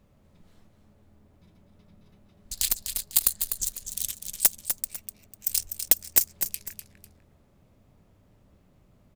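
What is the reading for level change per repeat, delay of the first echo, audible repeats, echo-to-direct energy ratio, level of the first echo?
−10.0 dB, 249 ms, 2, −7.5 dB, −8.0 dB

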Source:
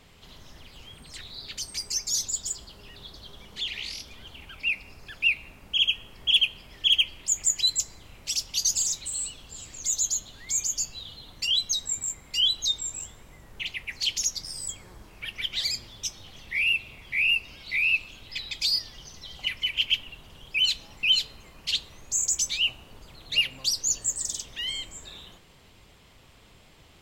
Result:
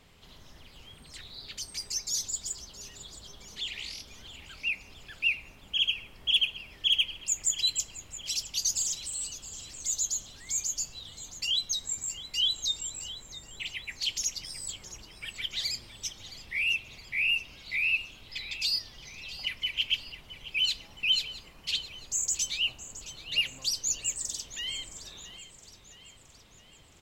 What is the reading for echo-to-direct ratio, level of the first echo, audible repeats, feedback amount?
−13.5 dB, −15.0 dB, 4, 53%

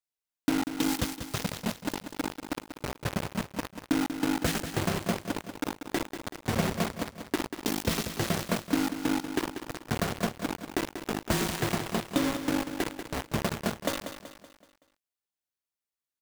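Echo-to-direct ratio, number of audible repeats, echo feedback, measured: −8.5 dB, 4, 45%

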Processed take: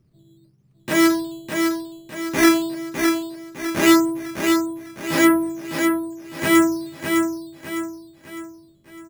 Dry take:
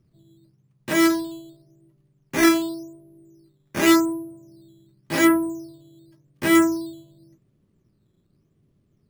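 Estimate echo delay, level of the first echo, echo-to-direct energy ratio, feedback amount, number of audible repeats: 606 ms, −5.0 dB, −4.0 dB, 42%, 4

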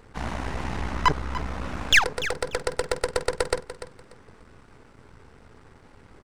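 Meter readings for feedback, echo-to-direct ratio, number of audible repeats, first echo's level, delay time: 22%, −13.0 dB, 2, −13.0 dB, 293 ms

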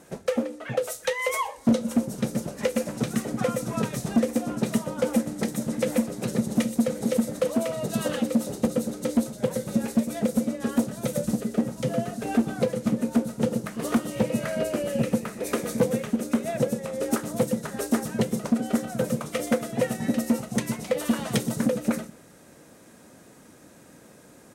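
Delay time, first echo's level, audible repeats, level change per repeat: 123 ms, −22.0 dB, 2, −10.5 dB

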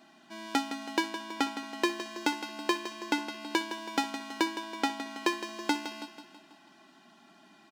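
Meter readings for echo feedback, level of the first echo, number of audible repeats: 52%, −10.5 dB, 5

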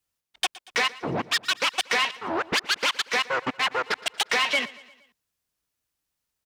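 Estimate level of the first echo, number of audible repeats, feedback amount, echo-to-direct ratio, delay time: −20.0 dB, 3, 53%, −18.5 dB, 117 ms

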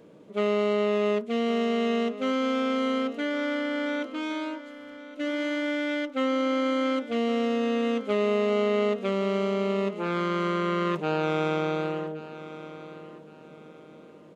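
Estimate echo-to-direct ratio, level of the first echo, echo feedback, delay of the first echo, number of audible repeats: −14.5 dB, −15.0 dB, 32%, 1,117 ms, 3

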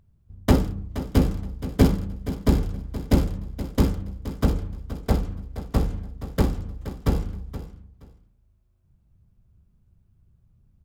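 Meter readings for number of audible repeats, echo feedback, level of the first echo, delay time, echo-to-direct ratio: 2, 19%, −13.0 dB, 473 ms, −13.0 dB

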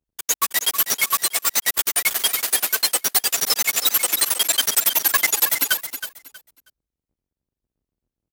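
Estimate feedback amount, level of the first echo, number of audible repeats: 23%, −10.0 dB, 2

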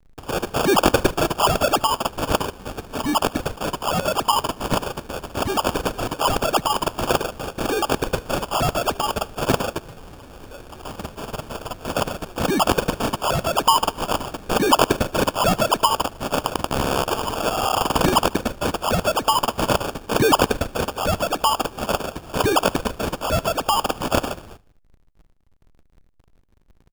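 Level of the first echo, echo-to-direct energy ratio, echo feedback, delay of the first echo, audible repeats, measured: −24.0 dB, −22.5 dB, 53%, 75 ms, 2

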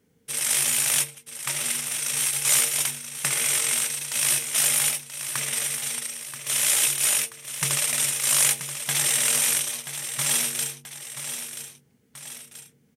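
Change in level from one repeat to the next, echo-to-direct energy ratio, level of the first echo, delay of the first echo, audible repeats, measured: −5.5 dB, −9.0 dB, −10.0 dB, 981 ms, 2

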